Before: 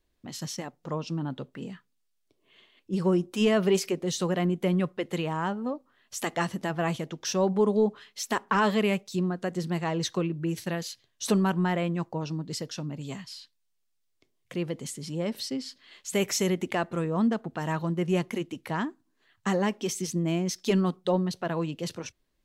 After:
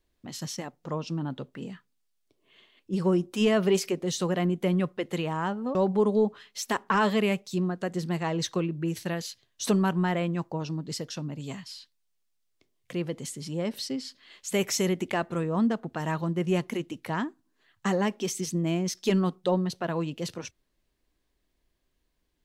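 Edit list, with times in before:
0:05.75–0:07.36: remove

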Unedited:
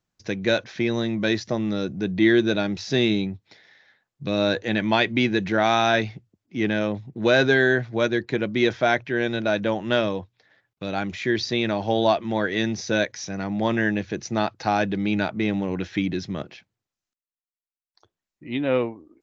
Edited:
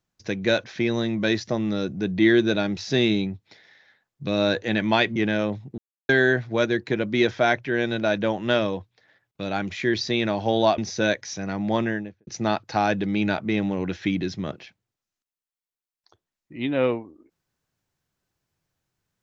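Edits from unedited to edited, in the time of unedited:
0:05.16–0:06.58: remove
0:07.20–0:07.51: silence
0:12.20–0:12.69: remove
0:13.62–0:14.18: fade out and dull

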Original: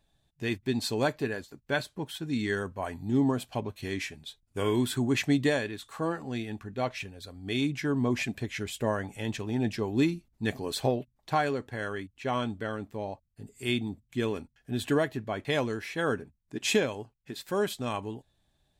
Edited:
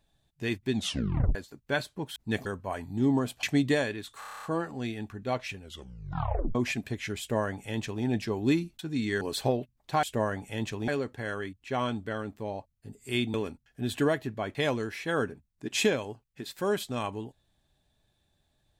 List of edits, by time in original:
0:00.73: tape stop 0.62 s
0:02.16–0:02.58: swap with 0:10.30–0:10.60
0:03.55–0:05.18: remove
0:05.94: stutter 0.03 s, 9 plays
0:07.10: tape stop 0.96 s
0:08.70–0:09.55: duplicate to 0:11.42
0:13.88–0:14.24: remove

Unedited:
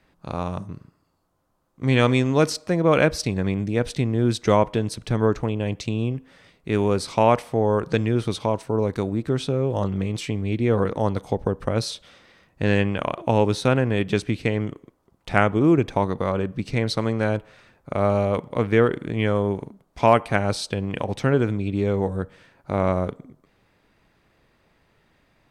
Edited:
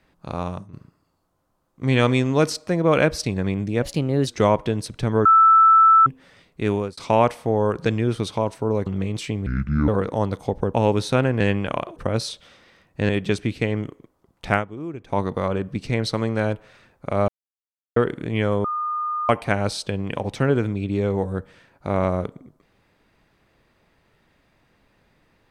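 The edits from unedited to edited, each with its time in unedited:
0:00.48–0:00.73: fade out, to −12.5 dB
0:03.82–0:04.35: play speed 117%
0:05.33–0:06.14: beep over 1,320 Hz −9.5 dBFS
0:06.79–0:07.05: fade out
0:08.94–0:09.86: remove
0:10.46–0:10.72: play speed 62%
0:11.58–0:12.71: swap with 0:13.27–0:13.93
0:15.36–0:16.02: duck −15 dB, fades 0.13 s
0:18.12–0:18.80: silence
0:19.48–0:20.13: beep over 1,220 Hz −22.5 dBFS

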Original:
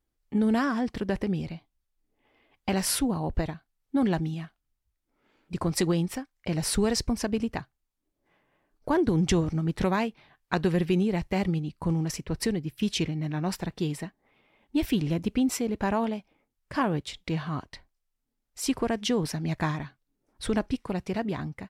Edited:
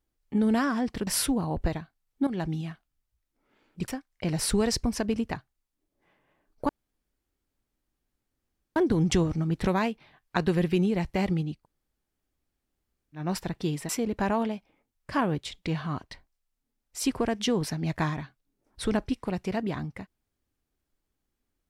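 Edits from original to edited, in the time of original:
0:01.07–0:02.80: remove
0:04.00–0:04.28: fade in, from −13 dB
0:05.61–0:06.12: remove
0:08.93: splice in room tone 2.07 s
0:11.75–0:13.37: fill with room tone, crossfade 0.16 s
0:14.06–0:15.51: remove

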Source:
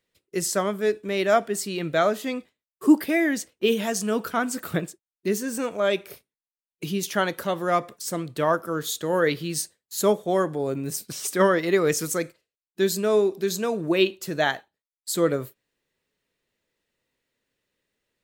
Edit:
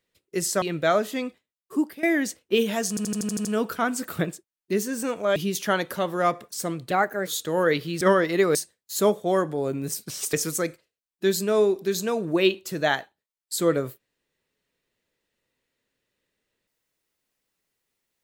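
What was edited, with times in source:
0:00.62–0:01.73: remove
0:02.36–0:03.14: fade out, to −16 dB
0:04.00: stutter 0.08 s, 8 plays
0:05.91–0:06.84: remove
0:08.39–0:08.83: play speed 122%
0:11.35–0:11.89: move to 0:09.57

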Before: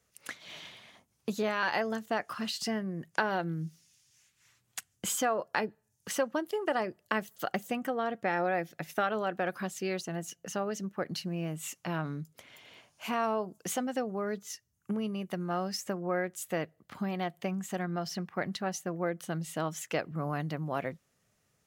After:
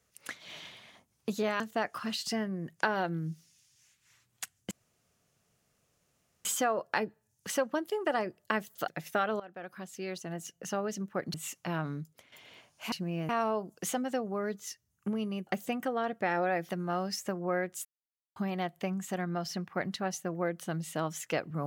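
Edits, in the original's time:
0:01.60–0:01.95: remove
0:05.06: splice in room tone 1.74 s
0:07.49–0:08.71: move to 0:15.30
0:09.23–0:10.52: fade in, from −18 dB
0:11.17–0:11.54: move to 0:13.12
0:12.17–0:12.52: fade out, to −9.5 dB
0:16.46–0:16.97: silence

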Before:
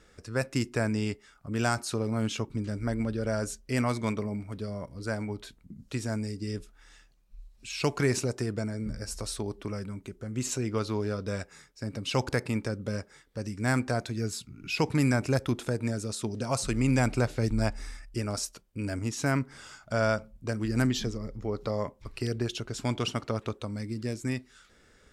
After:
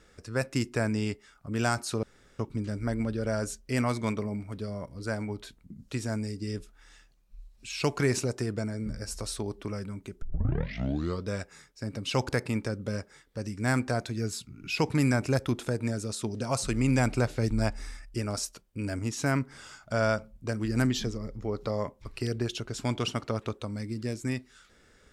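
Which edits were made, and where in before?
0:02.03–0:02.39: fill with room tone
0:10.22: tape start 1.04 s

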